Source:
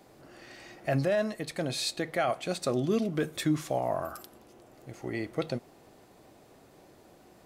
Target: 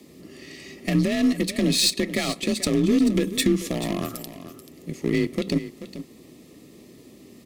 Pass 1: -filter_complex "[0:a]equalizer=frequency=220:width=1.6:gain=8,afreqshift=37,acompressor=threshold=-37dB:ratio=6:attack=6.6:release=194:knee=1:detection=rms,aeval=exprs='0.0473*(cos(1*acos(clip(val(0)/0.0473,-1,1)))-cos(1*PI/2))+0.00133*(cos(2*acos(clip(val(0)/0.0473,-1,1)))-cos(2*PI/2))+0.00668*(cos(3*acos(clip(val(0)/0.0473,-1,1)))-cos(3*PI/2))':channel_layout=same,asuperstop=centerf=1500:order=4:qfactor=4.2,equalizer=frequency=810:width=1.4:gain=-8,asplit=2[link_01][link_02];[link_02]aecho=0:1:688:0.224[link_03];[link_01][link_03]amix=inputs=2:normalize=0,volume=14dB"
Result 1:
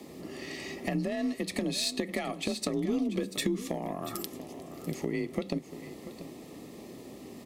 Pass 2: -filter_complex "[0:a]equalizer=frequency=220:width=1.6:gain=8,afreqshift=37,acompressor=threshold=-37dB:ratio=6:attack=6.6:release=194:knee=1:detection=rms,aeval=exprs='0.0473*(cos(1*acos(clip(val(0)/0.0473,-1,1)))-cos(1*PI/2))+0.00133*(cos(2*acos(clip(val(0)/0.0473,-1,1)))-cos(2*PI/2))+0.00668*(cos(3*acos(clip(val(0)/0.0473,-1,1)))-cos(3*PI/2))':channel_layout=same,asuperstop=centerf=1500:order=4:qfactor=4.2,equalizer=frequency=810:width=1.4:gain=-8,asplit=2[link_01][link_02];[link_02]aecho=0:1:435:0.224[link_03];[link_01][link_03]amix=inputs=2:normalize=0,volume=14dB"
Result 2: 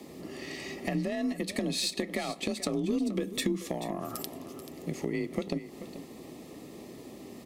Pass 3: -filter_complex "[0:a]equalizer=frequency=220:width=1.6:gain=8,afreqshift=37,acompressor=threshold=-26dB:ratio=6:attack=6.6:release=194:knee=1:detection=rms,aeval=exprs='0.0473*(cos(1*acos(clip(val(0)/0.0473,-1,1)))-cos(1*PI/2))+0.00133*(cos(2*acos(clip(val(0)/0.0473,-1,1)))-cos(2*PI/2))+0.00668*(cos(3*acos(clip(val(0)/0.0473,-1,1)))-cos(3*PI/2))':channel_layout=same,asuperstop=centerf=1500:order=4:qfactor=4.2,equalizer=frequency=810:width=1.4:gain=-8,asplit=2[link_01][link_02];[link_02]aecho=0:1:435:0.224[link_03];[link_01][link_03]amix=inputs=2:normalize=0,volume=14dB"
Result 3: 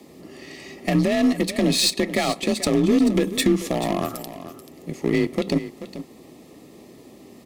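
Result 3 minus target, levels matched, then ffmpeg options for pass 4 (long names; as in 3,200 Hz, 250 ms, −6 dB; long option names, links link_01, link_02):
1,000 Hz band +6.0 dB
-filter_complex "[0:a]equalizer=frequency=220:width=1.6:gain=8,afreqshift=37,acompressor=threshold=-26dB:ratio=6:attack=6.6:release=194:knee=1:detection=rms,aeval=exprs='0.0473*(cos(1*acos(clip(val(0)/0.0473,-1,1)))-cos(1*PI/2))+0.00133*(cos(2*acos(clip(val(0)/0.0473,-1,1)))-cos(2*PI/2))+0.00668*(cos(3*acos(clip(val(0)/0.0473,-1,1)))-cos(3*PI/2))':channel_layout=same,asuperstop=centerf=1500:order=4:qfactor=4.2,equalizer=frequency=810:width=1.4:gain=-19,asplit=2[link_01][link_02];[link_02]aecho=0:1:435:0.224[link_03];[link_01][link_03]amix=inputs=2:normalize=0,volume=14dB"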